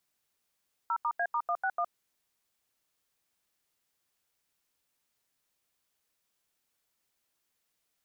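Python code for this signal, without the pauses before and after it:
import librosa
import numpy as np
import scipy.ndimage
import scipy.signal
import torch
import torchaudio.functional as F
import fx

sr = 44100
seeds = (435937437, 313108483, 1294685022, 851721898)

y = fx.dtmf(sr, digits='0*A*161', tone_ms=64, gap_ms=83, level_db=-29.5)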